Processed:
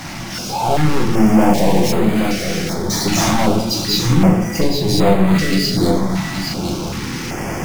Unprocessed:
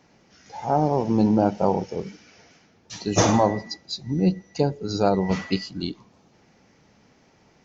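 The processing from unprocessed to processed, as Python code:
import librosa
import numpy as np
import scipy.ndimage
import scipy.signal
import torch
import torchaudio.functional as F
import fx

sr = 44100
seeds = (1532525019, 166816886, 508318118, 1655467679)

y = fx.zero_step(x, sr, step_db=-33.5, at=(1.13, 1.91))
y = fx.recorder_agc(y, sr, target_db=-9.0, rise_db_per_s=5.2, max_gain_db=30)
y = fx.notch(y, sr, hz=460.0, q=12.0)
y = fx.power_curve(y, sr, exponent=0.35)
y = y + 10.0 ** (-6.5 / 20.0) * np.pad(y, (int(823 * sr / 1000.0), 0))[:len(y)]
y = fx.room_shoebox(y, sr, seeds[0], volume_m3=82.0, walls='mixed', distance_m=0.68)
y = fx.filter_held_notch(y, sr, hz=2.6, low_hz=450.0, high_hz=5600.0)
y = y * 10.0 ** (-4.5 / 20.0)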